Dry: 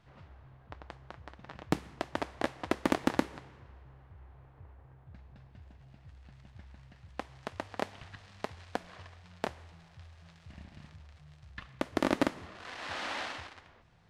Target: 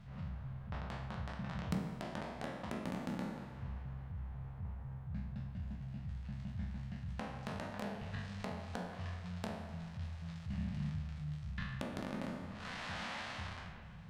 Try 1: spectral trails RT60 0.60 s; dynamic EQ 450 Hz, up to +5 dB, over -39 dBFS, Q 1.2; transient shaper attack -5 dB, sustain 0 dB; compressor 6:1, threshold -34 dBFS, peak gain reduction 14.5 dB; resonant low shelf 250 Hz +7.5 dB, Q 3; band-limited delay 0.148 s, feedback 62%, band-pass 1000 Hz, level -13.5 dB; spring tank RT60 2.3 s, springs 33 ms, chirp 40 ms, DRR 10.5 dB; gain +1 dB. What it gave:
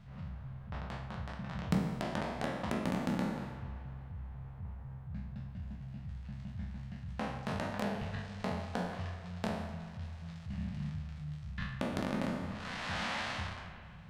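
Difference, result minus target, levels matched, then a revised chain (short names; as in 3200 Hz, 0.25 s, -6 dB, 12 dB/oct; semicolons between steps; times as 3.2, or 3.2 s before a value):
compressor: peak gain reduction -6.5 dB
spectral trails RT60 0.60 s; dynamic EQ 450 Hz, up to +5 dB, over -39 dBFS, Q 1.2; transient shaper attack -5 dB, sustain 0 dB; compressor 6:1, threshold -42 dBFS, peak gain reduction 21 dB; resonant low shelf 250 Hz +7.5 dB, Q 3; band-limited delay 0.148 s, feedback 62%, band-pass 1000 Hz, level -13.5 dB; spring tank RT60 2.3 s, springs 33 ms, chirp 40 ms, DRR 10.5 dB; gain +1 dB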